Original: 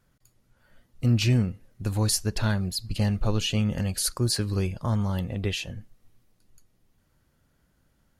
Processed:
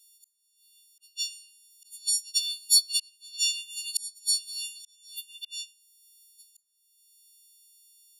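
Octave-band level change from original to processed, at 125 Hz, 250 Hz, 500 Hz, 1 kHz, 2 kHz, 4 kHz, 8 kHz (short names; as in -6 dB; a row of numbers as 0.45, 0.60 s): under -40 dB, under -40 dB, under -40 dB, under -40 dB, -5.5 dB, +4.5 dB, +4.5 dB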